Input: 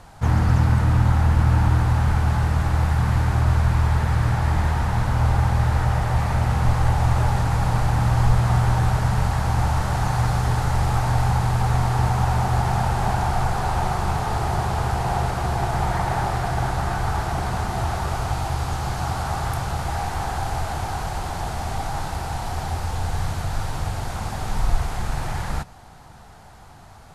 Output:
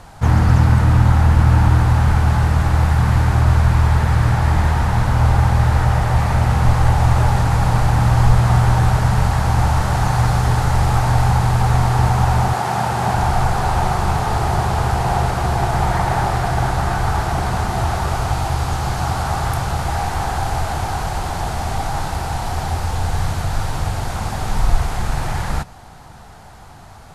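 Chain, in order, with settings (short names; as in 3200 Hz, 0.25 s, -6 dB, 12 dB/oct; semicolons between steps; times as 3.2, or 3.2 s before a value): 12.52–13.15 HPF 280 Hz -> 84 Hz 12 dB/oct; gain +5 dB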